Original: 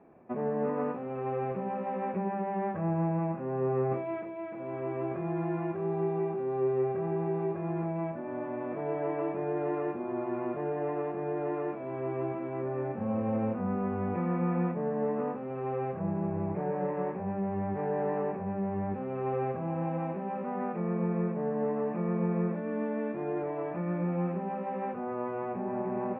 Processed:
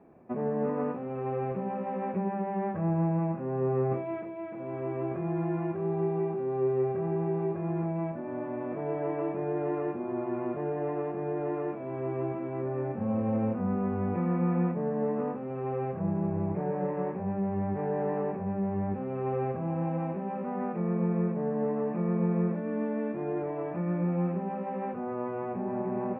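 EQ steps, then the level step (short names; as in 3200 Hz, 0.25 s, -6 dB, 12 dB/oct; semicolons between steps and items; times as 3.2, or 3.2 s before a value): low shelf 380 Hz +5 dB; -1.5 dB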